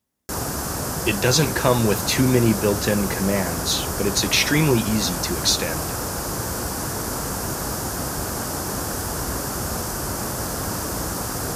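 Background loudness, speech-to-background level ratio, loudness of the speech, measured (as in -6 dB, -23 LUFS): -26.0 LUFS, 5.0 dB, -21.0 LUFS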